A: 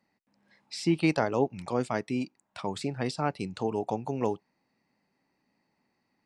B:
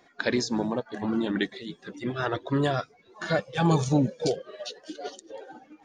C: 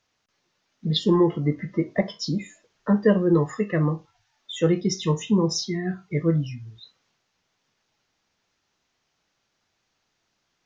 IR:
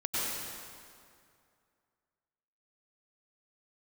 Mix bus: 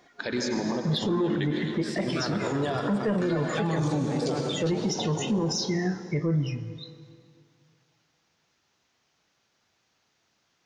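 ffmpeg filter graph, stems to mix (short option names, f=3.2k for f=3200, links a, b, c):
-filter_complex "[0:a]alimiter=limit=-19dB:level=0:latency=1,adelay=1100,volume=-5.5dB,asplit=2[a][b];[b]volume=-7dB[c];[1:a]volume=-1.5dB,asplit=2[d][e];[e]volume=-9.5dB[f];[2:a]highpass=58,asoftclip=type=tanh:threshold=-11.5dB,volume=2dB,asplit=2[g][h];[h]volume=-23dB[i];[3:a]atrim=start_sample=2205[j];[c][f][i]amix=inputs=3:normalize=0[k];[k][j]afir=irnorm=-1:irlink=0[l];[a][d][g][l]amix=inputs=4:normalize=0,alimiter=limit=-19dB:level=0:latency=1:release=75"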